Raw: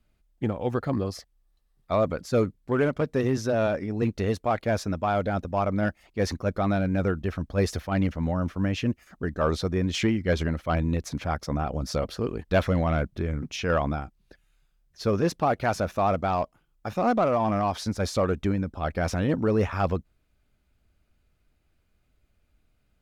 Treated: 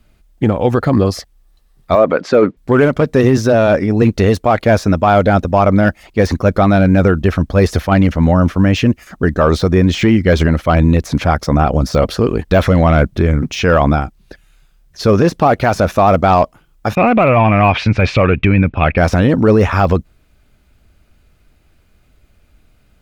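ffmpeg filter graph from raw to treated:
ffmpeg -i in.wav -filter_complex "[0:a]asettb=1/sr,asplit=3[link_01][link_02][link_03];[link_01]atrim=end=1.954[link_04];[link_02]atrim=start=1.95:end=2.57,asetpts=PTS-STARTPTS,afade=type=in:duration=0.004:curve=qsin,afade=type=out:start_time=0.616:duration=0.004:curve=qsin,acontrast=83,highpass=310,lowpass=2600[link_05];[link_03]atrim=start=2.566[link_06];[link_04][link_05]acrossfade=duration=0.004:curve1=hsin:curve2=qsin[link_07];[link_07][link_06]acrossfade=duration=0.004:curve1=qsin:curve2=hsin,asettb=1/sr,asplit=3[link_08][link_09][link_10];[link_08]atrim=end=16.954[link_11];[link_09]atrim=start=16.95:end=18.98,asetpts=PTS-STARTPTS,afade=type=in:duration=0.004:curve=qsin,afade=type=out:start_time=2.026:duration=0.004:curve=qsin,agate=range=-33dB:threshold=-42dB:ratio=3:release=100:detection=peak,lowpass=frequency=2500:width_type=q:width=7.5,equalizer=frequency=120:width_type=o:width=0.56:gain=10[link_12];[link_10]atrim=start=18.976[link_13];[link_11][link_12]acrossfade=duration=0.004:curve1=hsin:curve2=qsin[link_14];[link_14][link_13]acrossfade=duration=0.004:curve1=qsin:curve2=hsin,deesser=1,alimiter=level_in=17dB:limit=-1dB:release=50:level=0:latency=1,volume=-1dB" out.wav

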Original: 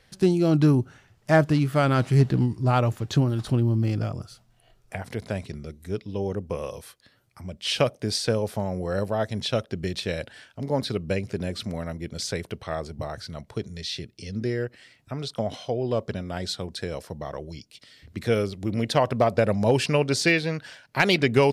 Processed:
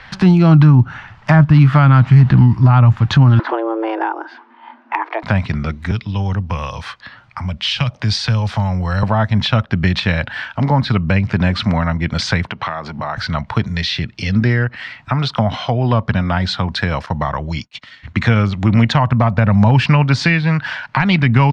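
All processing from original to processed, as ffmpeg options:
ffmpeg -i in.wav -filter_complex "[0:a]asettb=1/sr,asplit=3[link_01][link_02][link_03];[link_01]atrim=end=3.394[link_04];[link_02]atrim=start=3.39:end=5.23,asetpts=PTS-STARTPTS,afade=type=in:duration=0.004:curve=qsin,afade=type=out:start_time=1.836:duration=0.004:curve=qsin,afreqshift=220,highpass=380,lowpass=2100[link_05];[link_03]atrim=start=5.226[link_06];[link_04][link_05]acrossfade=duration=0.004:curve1=hsin:curve2=qsin[link_07];[link_07][link_06]acrossfade=duration=0.004:curve1=qsin:curve2=hsin,asettb=1/sr,asplit=3[link_08][link_09][link_10];[link_08]atrim=end=5.914[link_11];[link_09]atrim=start=5.91:end=9.03,asetpts=PTS-STARTPTS,afade=type=in:duration=0.004:curve=qsin,afade=type=out:start_time=3.116:duration=0.004:curve=qsin,acrossover=split=140|3000[link_12][link_13][link_14];[link_13]acompressor=threshold=-51dB:ratio=2:attack=3.2:release=140:knee=2.83:detection=peak[link_15];[link_12][link_15][link_14]amix=inputs=3:normalize=0,lowpass=9800[link_16];[link_10]atrim=start=9.026[link_17];[link_11][link_16]acrossfade=duration=0.004:curve1=hsin:curve2=qsin[link_18];[link_18][link_17]acrossfade=duration=0.004:curve1=qsin:curve2=hsin,asettb=1/sr,asplit=3[link_19][link_20][link_21];[link_19]atrim=end=12.474[link_22];[link_20]atrim=start=12.47:end=13.17,asetpts=PTS-STARTPTS,afade=type=in:duration=0.004:curve=qsin,afade=type=out:start_time=0.696:duration=0.004:curve=qsin,acompressor=threshold=-36dB:ratio=5:attack=3.2:release=140:knee=1:detection=peak,highpass=140,lowpass=7000[link_23];[link_21]atrim=start=13.166[link_24];[link_22][link_23]acrossfade=duration=0.004:curve1=hsin:curve2=qsin[link_25];[link_25][link_24]acrossfade=duration=0.004:curve1=qsin:curve2=hsin,asettb=1/sr,asplit=3[link_26][link_27][link_28];[link_26]atrim=end=17.064[link_29];[link_27]atrim=start=17.06:end=19.68,asetpts=PTS-STARTPTS,afade=type=in:duration=0.004:curve=qsin,afade=type=out:start_time=2.616:duration=0.004:curve=qsin,agate=range=-33dB:threshold=-46dB:ratio=3:release=100:detection=peak,equalizer=frequency=6700:width_type=o:width=0.2:gain=7,bandreject=frequency=4900:width=14[link_30];[link_28]atrim=start=19.676[link_31];[link_29][link_30]acrossfade=duration=0.004:curve1=hsin:curve2=qsin[link_32];[link_32][link_31]acrossfade=duration=0.004:curve1=qsin:curve2=hsin,firequalizer=gain_entry='entry(230,0);entry(400,-10);entry(910,11);entry(11000,-29)':delay=0.05:min_phase=1,acrossover=split=200[link_33][link_34];[link_34]acompressor=threshold=-37dB:ratio=3[link_35];[link_33][link_35]amix=inputs=2:normalize=0,alimiter=level_in=18.5dB:limit=-1dB:release=50:level=0:latency=1,volume=-1dB" out.wav

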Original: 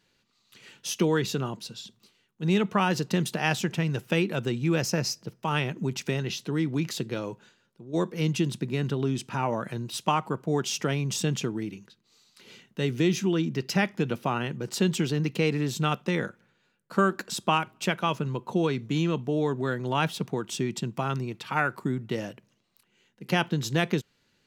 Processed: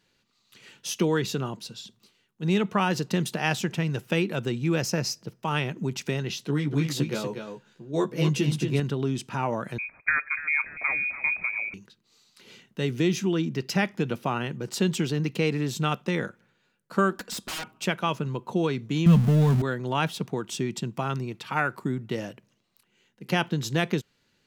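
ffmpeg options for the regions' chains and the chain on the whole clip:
ffmpeg -i in.wav -filter_complex "[0:a]asettb=1/sr,asplit=3[link_01][link_02][link_03];[link_01]atrim=end=6.474[link_04];[link_02]atrim=start=6.47:end=8.8,asetpts=PTS-STARTPTS,afade=type=in:duration=0.004:curve=qsin,afade=type=out:start_time=2.326:duration=0.004:curve=qsin,asplit=2[link_05][link_06];[link_06]adelay=14,volume=-3.5dB[link_07];[link_05][link_07]amix=inputs=2:normalize=0,atrim=end_sample=102753,aecho=1:1:240:0.473,atrim=end_sample=102753[link_08];[link_03]atrim=start=8.796[link_09];[link_04][link_08]acrossfade=duration=0.004:curve1=hsin:curve2=qsin[link_10];[link_10][link_09]acrossfade=duration=0.004:curve1=qsin:curve2=hsin,asettb=1/sr,asplit=3[link_11][link_12][link_13];[link_11]atrim=end=9.784[link_14];[link_12]atrim=start=9.78:end=11.74,asetpts=PTS-STARTPTS,afade=type=in:duration=0.004:curve=qsin,afade=type=out:start_time=1.956:duration=0.004:curve=qsin,asplit=5[link_15][link_16][link_17][link_18][link_19];[link_16]adelay=288,afreqshift=-36,volume=-13dB[link_20];[link_17]adelay=576,afreqshift=-72,volume=-19.9dB[link_21];[link_18]adelay=864,afreqshift=-108,volume=-26.9dB[link_22];[link_19]adelay=1152,afreqshift=-144,volume=-33.8dB[link_23];[link_15][link_20][link_21][link_22][link_23]amix=inputs=5:normalize=0,atrim=end_sample=86436,lowpass=frequency=2200:width_type=q:width=0.5098,lowpass=frequency=2200:width_type=q:width=0.6013,lowpass=frequency=2200:width_type=q:width=0.9,lowpass=frequency=2200:width_type=q:width=2.563,afreqshift=-2600[link_24];[link_13]atrim=start=11.736[link_25];[link_14][link_24]acrossfade=duration=0.004:curve1=hsin:curve2=qsin[link_26];[link_26][link_25]acrossfade=duration=0.004:curve1=qsin:curve2=hsin,asettb=1/sr,asplit=3[link_27][link_28][link_29];[link_27]atrim=end=17.154[link_30];[link_28]atrim=start=17.15:end=17.72,asetpts=PTS-STARTPTS,afade=type=in:duration=0.004:curve=qsin,afade=type=out:start_time=0.566:duration=0.004:curve=qsin,aecho=1:1:4.1:0.46,atrim=end_sample=25137,aeval=exprs='0.0376*(abs(mod(val(0)/0.0376+3,4)-2)-1)':channel_layout=same[link_31];[link_29]atrim=start=17.716[link_32];[link_30][link_31]acrossfade=duration=0.004:curve1=hsin:curve2=qsin[link_33];[link_33][link_32]acrossfade=duration=0.004:curve1=qsin:curve2=hsin,asettb=1/sr,asplit=3[link_34][link_35][link_36];[link_34]atrim=end=19.064[link_37];[link_35]atrim=start=19.06:end=19.62,asetpts=PTS-STARTPTS,afade=type=in:duration=0.004:curve=qsin,afade=type=out:start_time=0.556:duration=0.004:curve=qsin,aeval=exprs='val(0)+0.5*0.0282*sgn(val(0))':channel_layout=same,lowshelf=frequency=250:width_type=q:width=3:gain=8[link_38];[link_36]atrim=start=19.616[link_39];[link_37][link_38]acrossfade=duration=0.004:curve1=hsin:curve2=qsin[link_40];[link_40][link_39]acrossfade=duration=0.004:curve1=qsin:curve2=hsin" out.wav

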